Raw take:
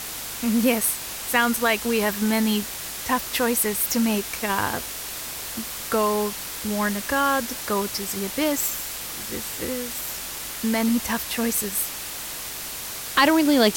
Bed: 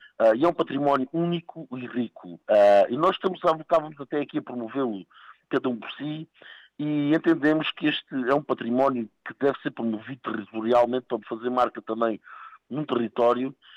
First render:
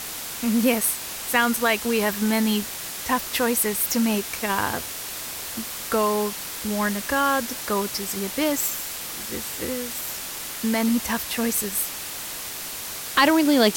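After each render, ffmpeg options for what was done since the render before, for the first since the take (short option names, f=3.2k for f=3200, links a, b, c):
-af "bandreject=f=50:t=h:w=4,bandreject=f=100:t=h:w=4,bandreject=f=150:t=h:w=4"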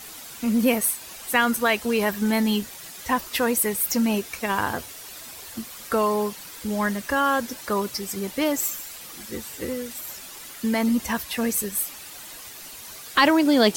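-af "afftdn=nr=10:nf=-34"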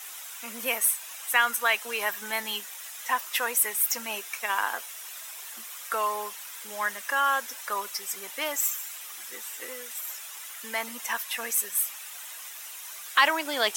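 -af "highpass=950,equalizer=f=4.5k:t=o:w=0.29:g=-8.5"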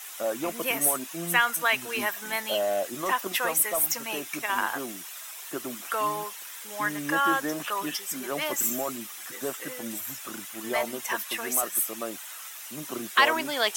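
-filter_complex "[1:a]volume=-10.5dB[a];[0:a][a]amix=inputs=2:normalize=0"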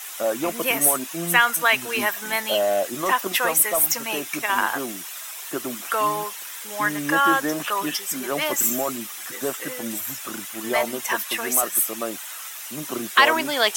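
-af "volume=5.5dB,alimiter=limit=-3dB:level=0:latency=1"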